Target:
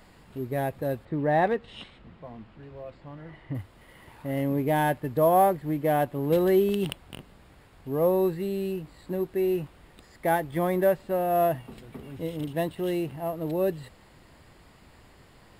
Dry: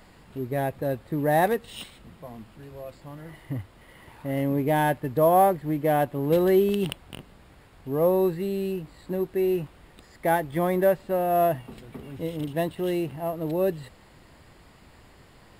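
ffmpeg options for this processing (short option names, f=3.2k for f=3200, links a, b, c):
-filter_complex "[0:a]asettb=1/sr,asplit=3[a][b][c];[a]atrim=end=1.054[d];[b]atrim=start=1.05:end=3.55,asetpts=PTS-STARTPTS,afade=t=in:d=0.004:c=qsin,afade=t=out:st=2.496:d=0.004:c=qsin,lowpass=3.4k[e];[c]atrim=start=3.546[f];[d][e]acrossfade=d=0.004:c1=hsin:c2=qsin[g];[g][f]acrossfade=d=0.004:c1=qsin:c2=hsin,volume=-1.5dB"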